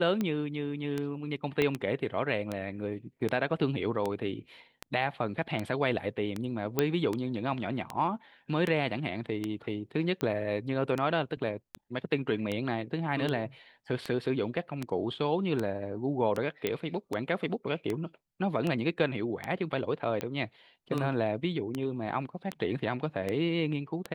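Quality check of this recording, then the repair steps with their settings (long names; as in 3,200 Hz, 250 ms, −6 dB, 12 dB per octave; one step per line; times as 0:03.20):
scratch tick 78 rpm −18 dBFS
0:01.62: click −15 dBFS
0:06.79: click −11 dBFS
0:16.67: click −15 dBFS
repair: click removal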